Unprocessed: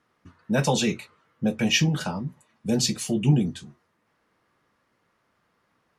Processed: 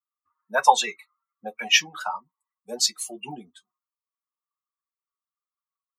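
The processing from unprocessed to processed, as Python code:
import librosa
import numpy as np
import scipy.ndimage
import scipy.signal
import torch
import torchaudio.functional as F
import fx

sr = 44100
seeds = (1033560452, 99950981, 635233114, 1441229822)

y = fx.bin_expand(x, sr, power=2.0)
y = fx.highpass_res(y, sr, hz=880.0, q=3.4)
y = y * 10.0 ** (5.5 / 20.0)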